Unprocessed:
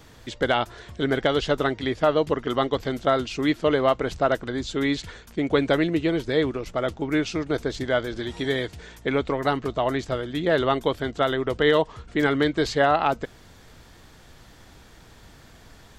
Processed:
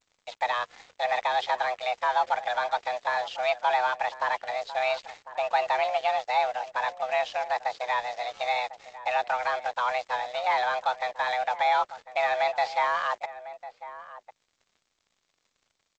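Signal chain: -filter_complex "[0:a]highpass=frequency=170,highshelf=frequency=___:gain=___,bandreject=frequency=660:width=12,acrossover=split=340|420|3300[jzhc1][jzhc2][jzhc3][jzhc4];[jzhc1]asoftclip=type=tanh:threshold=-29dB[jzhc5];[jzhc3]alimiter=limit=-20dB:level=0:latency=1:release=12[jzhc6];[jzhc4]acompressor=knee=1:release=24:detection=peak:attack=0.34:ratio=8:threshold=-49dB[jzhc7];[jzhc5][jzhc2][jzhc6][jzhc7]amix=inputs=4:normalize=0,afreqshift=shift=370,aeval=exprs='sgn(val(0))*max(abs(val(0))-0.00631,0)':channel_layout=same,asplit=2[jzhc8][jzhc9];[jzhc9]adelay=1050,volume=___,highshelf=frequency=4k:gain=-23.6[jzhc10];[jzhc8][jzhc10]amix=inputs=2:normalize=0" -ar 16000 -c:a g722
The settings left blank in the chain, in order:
3.2k, 5, -14dB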